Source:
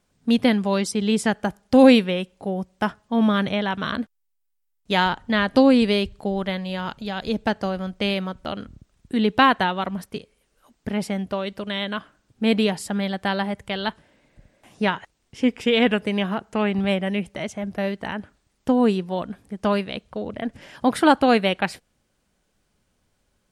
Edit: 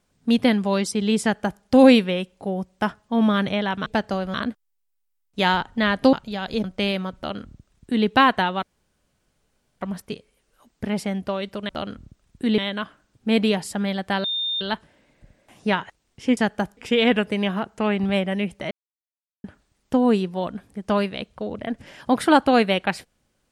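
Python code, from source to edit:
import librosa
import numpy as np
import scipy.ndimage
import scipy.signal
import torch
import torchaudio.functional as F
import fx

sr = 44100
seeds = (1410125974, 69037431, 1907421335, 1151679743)

y = fx.edit(x, sr, fx.duplicate(start_s=1.22, length_s=0.4, to_s=15.52),
    fx.cut(start_s=5.65, length_s=1.22),
    fx.move(start_s=7.38, length_s=0.48, to_s=3.86),
    fx.duplicate(start_s=8.39, length_s=0.89, to_s=11.73),
    fx.insert_room_tone(at_s=9.85, length_s=1.18),
    fx.bleep(start_s=13.39, length_s=0.37, hz=3630.0, db=-22.5),
    fx.silence(start_s=17.46, length_s=0.73), tone=tone)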